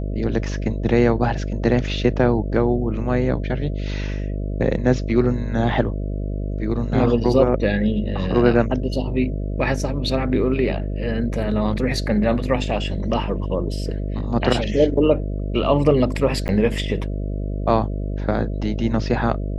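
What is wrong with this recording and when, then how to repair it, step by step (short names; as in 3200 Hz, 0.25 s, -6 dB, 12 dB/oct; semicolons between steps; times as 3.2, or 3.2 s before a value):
buzz 50 Hz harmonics 13 -25 dBFS
16.48–16.49 gap 9.8 ms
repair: de-hum 50 Hz, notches 13; interpolate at 16.48, 9.8 ms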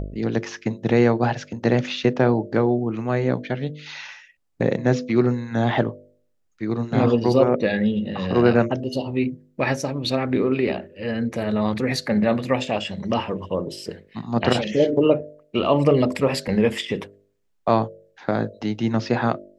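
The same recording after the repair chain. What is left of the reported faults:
none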